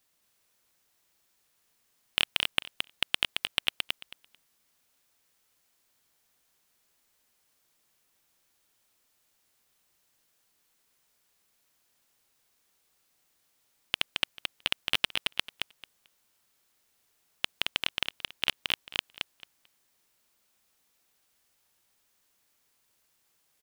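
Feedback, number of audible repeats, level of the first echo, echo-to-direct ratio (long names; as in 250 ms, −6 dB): 17%, 3, −4.0 dB, −4.0 dB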